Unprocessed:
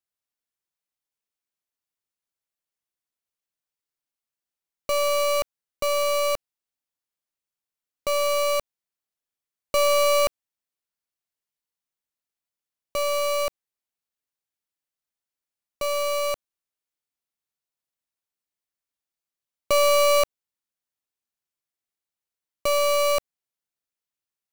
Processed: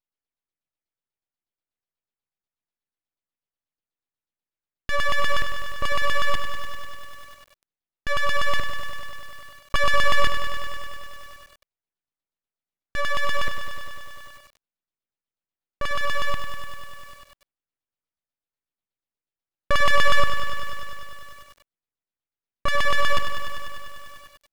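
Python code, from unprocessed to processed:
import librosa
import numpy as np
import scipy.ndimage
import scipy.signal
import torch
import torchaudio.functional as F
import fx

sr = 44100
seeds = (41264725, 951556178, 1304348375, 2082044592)

y = fx.filter_lfo_lowpass(x, sr, shape='saw_down', hz=8.2, low_hz=620.0, high_hz=2500.0, q=2.7)
y = np.abs(y)
y = fx.echo_crushed(y, sr, ms=99, feedback_pct=80, bits=7, wet_db=-9)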